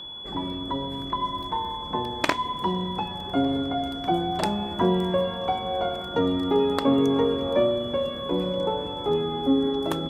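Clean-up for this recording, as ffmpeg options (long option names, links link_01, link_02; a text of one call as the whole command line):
ffmpeg -i in.wav -af "bandreject=frequency=3400:width=30" out.wav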